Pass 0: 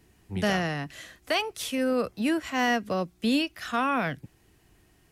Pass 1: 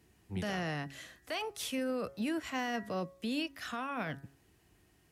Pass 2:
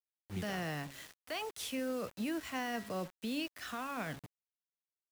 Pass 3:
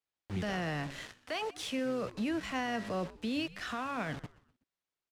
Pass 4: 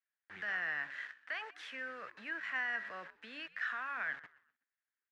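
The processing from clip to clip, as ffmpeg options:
-af "alimiter=limit=-22.5dB:level=0:latency=1:release=11,highpass=48,bandreject=f=137.7:t=h:w=4,bandreject=f=275.4:t=h:w=4,bandreject=f=413.1:t=h:w=4,bandreject=f=550.8:t=h:w=4,bandreject=f=688.5:t=h:w=4,bandreject=f=826.2:t=h:w=4,bandreject=f=963.9:t=h:w=4,bandreject=f=1.1016k:t=h:w=4,bandreject=f=1.2393k:t=h:w=4,bandreject=f=1.377k:t=h:w=4,bandreject=f=1.5147k:t=h:w=4,bandreject=f=1.6524k:t=h:w=4,bandreject=f=1.7901k:t=h:w=4,bandreject=f=1.9278k:t=h:w=4,volume=-5dB"
-af "acrusher=bits=7:mix=0:aa=0.000001,volume=-2.5dB"
-filter_complex "[0:a]asplit=2[a][b];[b]alimiter=level_in=15.5dB:limit=-24dB:level=0:latency=1:release=68,volume=-15.5dB,volume=3dB[c];[a][c]amix=inputs=2:normalize=0,adynamicsmooth=sensitivity=6:basefreq=5.6k,asplit=4[d][e][f][g];[e]adelay=124,afreqshift=-130,volume=-19.5dB[h];[f]adelay=248,afreqshift=-260,volume=-27.5dB[i];[g]adelay=372,afreqshift=-390,volume=-35.4dB[j];[d][h][i][j]amix=inputs=4:normalize=0"
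-af "bandpass=f=1.7k:t=q:w=5.1:csg=0,volume=8dB"

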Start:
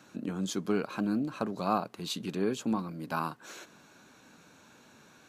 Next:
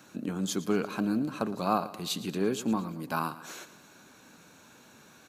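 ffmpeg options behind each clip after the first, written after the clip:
-af "highshelf=f=10k:g=9.5,aecho=1:1:114|228|342|456:0.158|0.0792|0.0396|0.0198,volume=1.5dB"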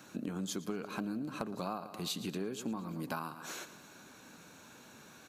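-af "acompressor=threshold=-34dB:ratio=12"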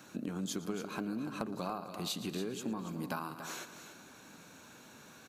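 -af "aecho=1:1:284:0.299"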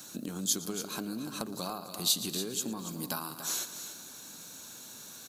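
-af "aexciter=amount=4.7:drive=4:freq=3.4k"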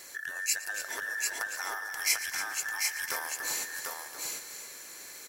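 -af "afftfilt=real='real(if(between(b,1,1012),(2*floor((b-1)/92)+1)*92-b,b),0)':imag='imag(if(between(b,1,1012),(2*floor((b-1)/92)+1)*92-b,b),0)*if(between(b,1,1012),-1,1)':win_size=2048:overlap=0.75,aecho=1:1:744:0.668"

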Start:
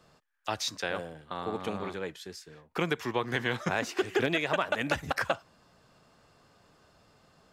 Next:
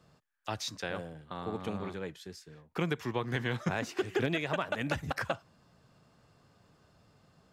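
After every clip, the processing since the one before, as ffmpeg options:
-af "equalizer=f=120:w=0.62:g=8,volume=-5dB"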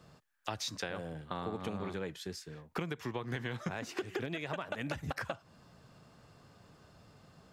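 -af "acompressor=threshold=-38dB:ratio=12,volume=4.5dB"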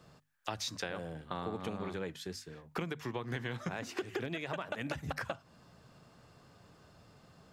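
-af "bandreject=f=50:t=h:w=6,bandreject=f=100:t=h:w=6,bandreject=f=150:t=h:w=6,bandreject=f=200:t=h:w=6,bandreject=f=250:t=h:w=6"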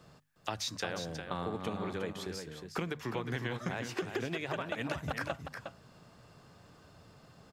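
-af "aecho=1:1:360:0.422,volume=1.5dB"

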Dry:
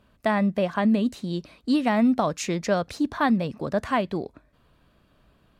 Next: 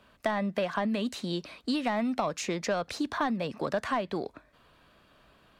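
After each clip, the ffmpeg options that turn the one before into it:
-filter_complex "[0:a]asplit=2[a][b];[b]highpass=f=720:p=1,volume=10dB,asoftclip=type=tanh:threshold=-11dB[c];[a][c]amix=inputs=2:normalize=0,lowpass=f=7k:p=1,volume=-6dB,acrossover=split=140|920[d][e][f];[d]acompressor=threshold=-49dB:ratio=4[g];[e]acompressor=threshold=-29dB:ratio=4[h];[f]acompressor=threshold=-35dB:ratio=4[i];[g][h][i]amix=inputs=3:normalize=0"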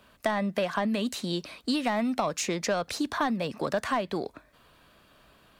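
-af "highshelf=f=7.2k:g=9.5,volume=1.5dB"

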